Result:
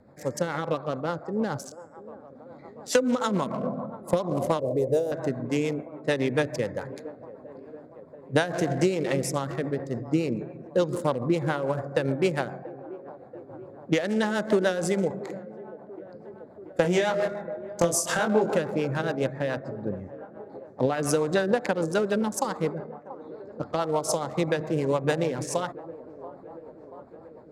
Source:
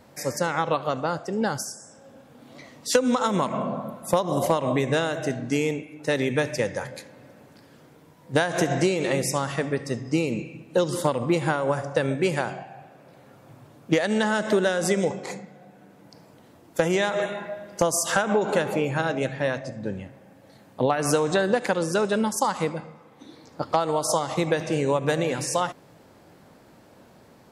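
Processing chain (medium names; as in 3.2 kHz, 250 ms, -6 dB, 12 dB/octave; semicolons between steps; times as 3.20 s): local Wiener filter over 15 samples; 16.82–18.54 s: doubling 23 ms -2.5 dB; feedback echo behind a band-pass 683 ms, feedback 70%, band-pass 540 Hz, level -15.5 dB; rotary cabinet horn 7 Hz; 4.60–5.12 s: FFT filter 120 Hz 0 dB, 180 Hz -13 dB, 510 Hz +6 dB, 1.2 kHz -22 dB, 3.2 kHz -17 dB, 13 kHz +6 dB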